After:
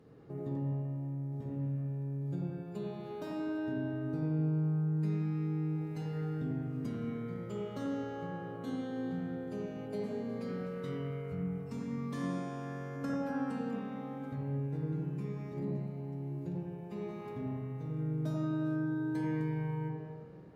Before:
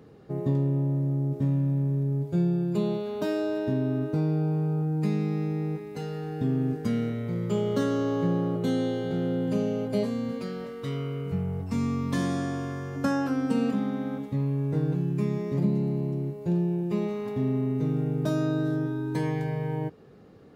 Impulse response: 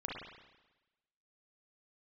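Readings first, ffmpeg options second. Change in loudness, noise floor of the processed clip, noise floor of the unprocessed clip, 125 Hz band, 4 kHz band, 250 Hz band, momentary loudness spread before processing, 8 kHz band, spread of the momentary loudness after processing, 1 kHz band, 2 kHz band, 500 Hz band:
−9.0 dB, −45 dBFS, −40 dBFS, −8.5 dB, −13.0 dB, −9.0 dB, 6 LU, can't be measured, 7 LU, −8.0 dB, −8.0 dB, −10.5 dB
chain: -filter_complex "[0:a]acompressor=threshold=-32dB:ratio=2[link_01];[1:a]atrim=start_sample=2205,asetrate=29106,aresample=44100[link_02];[link_01][link_02]afir=irnorm=-1:irlink=0,volume=-8dB"

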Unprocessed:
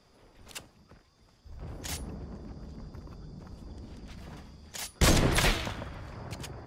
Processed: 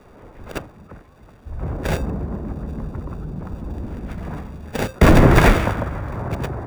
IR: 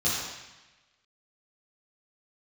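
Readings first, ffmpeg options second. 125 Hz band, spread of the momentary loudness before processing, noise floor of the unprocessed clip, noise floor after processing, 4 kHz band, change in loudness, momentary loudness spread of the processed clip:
+14.0 dB, 22 LU, −63 dBFS, −48 dBFS, +0.5 dB, +9.5 dB, 20 LU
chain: -filter_complex "[0:a]acrossover=split=130|540|2200[link_01][link_02][link_03][link_04];[link_04]acrusher=samples=42:mix=1:aa=0.000001[link_05];[link_01][link_02][link_03][link_05]amix=inputs=4:normalize=0,alimiter=level_in=16.5dB:limit=-1dB:release=50:level=0:latency=1,volume=-1dB"

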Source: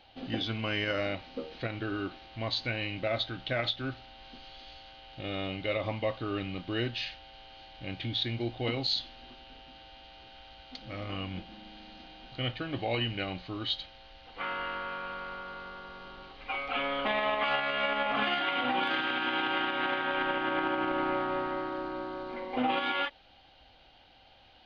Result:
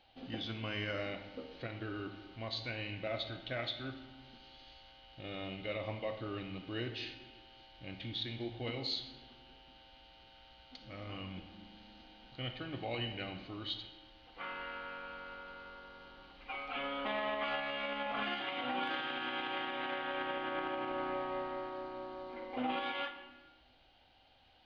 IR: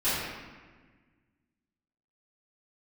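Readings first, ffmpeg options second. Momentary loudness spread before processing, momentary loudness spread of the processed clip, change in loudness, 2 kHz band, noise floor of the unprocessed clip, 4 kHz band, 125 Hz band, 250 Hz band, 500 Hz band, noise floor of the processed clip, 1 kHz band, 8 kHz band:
20 LU, 19 LU, −7.5 dB, −8.0 dB, −59 dBFS, −7.5 dB, −7.0 dB, −7.5 dB, −7.0 dB, −64 dBFS, −7.5 dB, can't be measured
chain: -filter_complex "[0:a]asplit=2[link_01][link_02];[1:a]atrim=start_sample=2205,asetrate=52920,aresample=44100,adelay=32[link_03];[link_02][link_03]afir=irnorm=-1:irlink=0,volume=-19dB[link_04];[link_01][link_04]amix=inputs=2:normalize=0,volume=-8dB"

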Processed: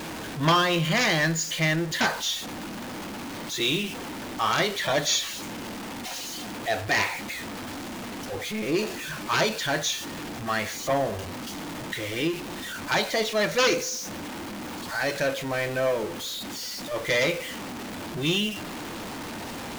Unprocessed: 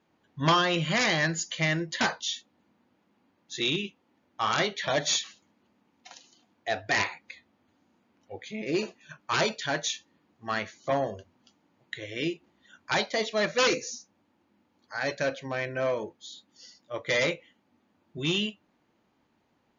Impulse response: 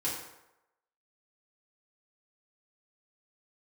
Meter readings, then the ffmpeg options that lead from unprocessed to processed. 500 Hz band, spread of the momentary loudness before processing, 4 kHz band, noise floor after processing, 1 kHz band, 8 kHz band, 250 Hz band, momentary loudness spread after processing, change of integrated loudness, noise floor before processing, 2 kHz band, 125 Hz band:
+3.0 dB, 17 LU, +3.5 dB, −36 dBFS, +3.0 dB, can't be measured, +4.5 dB, 13 LU, +1.5 dB, −71 dBFS, +3.0 dB, +4.0 dB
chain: -filter_complex "[0:a]aeval=exprs='val(0)+0.5*0.0299*sgn(val(0))':channel_layout=same,asplit=2[link_01][link_02];[1:a]atrim=start_sample=2205[link_03];[link_02][link_03]afir=irnorm=-1:irlink=0,volume=-20dB[link_04];[link_01][link_04]amix=inputs=2:normalize=0"

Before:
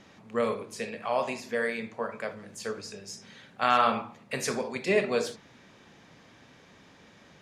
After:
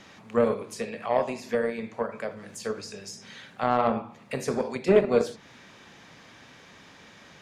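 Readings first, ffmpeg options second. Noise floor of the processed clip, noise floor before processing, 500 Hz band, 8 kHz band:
−52 dBFS, −56 dBFS, +4.5 dB, −2.0 dB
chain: -filter_complex "[0:a]acrossover=split=830[link_01][link_02];[link_01]aeval=exprs='0.188*(cos(1*acos(clip(val(0)/0.188,-1,1)))-cos(1*PI/2))+0.0106*(cos(5*acos(clip(val(0)/0.188,-1,1)))-cos(5*PI/2))+0.0188*(cos(7*acos(clip(val(0)/0.188,-1,1)))-cos(7*PI/2))':channel_layout=same[link_03];[link_02]acompressor=threshold=-45dB:ratio=6[link_04];[link_03][link_04]amix=inputs=2:normalize=0,volume=6.5dB"

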